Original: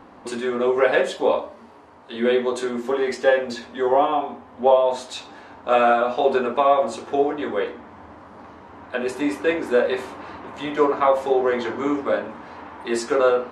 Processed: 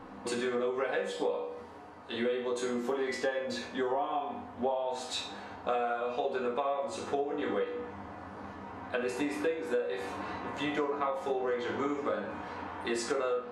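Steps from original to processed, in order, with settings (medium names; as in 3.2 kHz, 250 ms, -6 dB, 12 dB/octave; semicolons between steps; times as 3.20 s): peaking EQ 81 Hz +8 dB 0.79 oct; reverberation RT60 0.45 s, pre-delay 4 ms, DRR 2.5 dB; compression 10:1, threshold -25 dBFS, peak gain reduction 17.5 dB; trim -3.5 dB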